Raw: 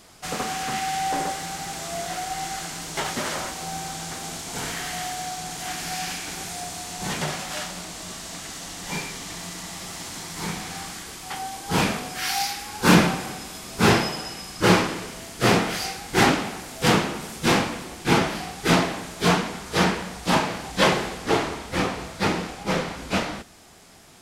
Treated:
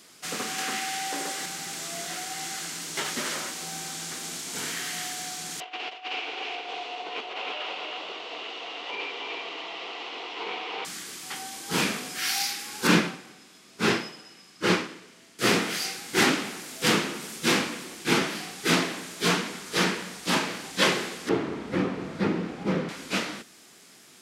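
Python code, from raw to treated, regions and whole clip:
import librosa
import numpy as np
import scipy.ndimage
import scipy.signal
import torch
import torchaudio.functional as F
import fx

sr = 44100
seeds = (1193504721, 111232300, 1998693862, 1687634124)

y = fx.chain(x, sr, fx.highpass(hz=210.0, slope=12),
    fx.band_squash(depth_pct=100), at=(0.58, 1.46))
y = fx.chain(y, sr, fx.cabinet(low_hz=340.0, low_slope=24, high_hz=3400.0, hz=(460.0, 730.0, 1000.0, 1700.0, 2800.0), db=(9, 9, 6, -8, 8)),
    fx.over_compress(threshold_db=-29.0, ratio=-0.5),
    fx.echo_single(ms=312, db=-3.5), at=(5.6, 10.85))
y = fx.chain(y, sr, fx.high_shelf(hz=8100.0, db=-12.0),
    fx.upward_expand(threshold_db=-34.0, expansion=1.5), at=(12.87, 15.39))
y = fx.chain(y, sr, fx.lowpass(hz=1000.0, slope=6),
    fx.low_shelf(hz=310.0, db=8.5),
    fx.band_squash(depth_pct=70), at=(21.29, 22.89))
y = scipy.signal.sosfilt(scipy.signal.butter(2, 240.0, 'highpass', fs=sr, output='sos'), y)
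y = fx.peak_eq(y, sr, hz=750.0, db=-9.5, octaves=1.2)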